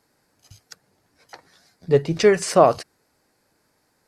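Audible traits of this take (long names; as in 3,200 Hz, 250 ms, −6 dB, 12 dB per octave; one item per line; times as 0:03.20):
background noise floor −68 dBFS
spectral slope −5.0 dB per octave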